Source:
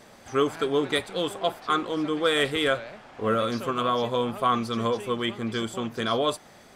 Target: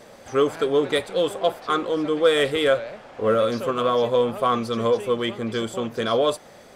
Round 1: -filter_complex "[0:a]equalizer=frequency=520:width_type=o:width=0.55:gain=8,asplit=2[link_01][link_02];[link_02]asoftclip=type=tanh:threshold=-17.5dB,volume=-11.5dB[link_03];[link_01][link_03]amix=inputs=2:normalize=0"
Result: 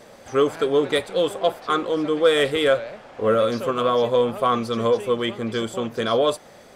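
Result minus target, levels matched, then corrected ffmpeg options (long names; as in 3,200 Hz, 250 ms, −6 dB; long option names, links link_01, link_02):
soft clipping: distortion −9 dB
-filter_complex "[0:a]equalizer=frequency=520:width_type=o:width=0.55:gain=8,asplit=2[link_01][link_02];[link_02]asoftclip=type=tanh:threshold=-29dB,volume=-11.5dB[link_03];[link_01][link_03]amix=inputs=2:normalize=0"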